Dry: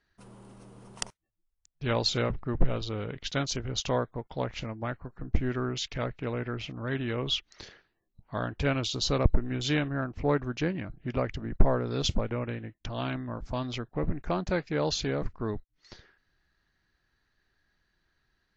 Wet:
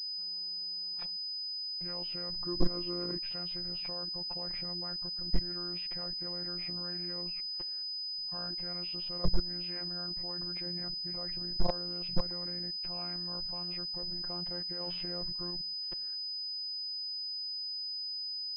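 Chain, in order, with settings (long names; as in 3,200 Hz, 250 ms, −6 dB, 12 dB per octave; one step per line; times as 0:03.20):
hearing-aid frequency compression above 1,600 Hz 1.5 to 1
mains-hum notches 50/100/150/200/250/300 Hz
output level in coarse steps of 23 dB
0:14.80–0:15.51: leveller curve on the samples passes 1
phases set to zero 176 Hz
gain into a clipping stage and back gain 20.5 dB
0:02.44–0:03.20: hollow resonant body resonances 310/1,100 Hz, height 13 dB, ringing for 25 ms
0:07.21–0:07.63: high-frequency loss of the air 470 metres
switching amplifier with a slow clock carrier 5,000 Hz
level +4 dB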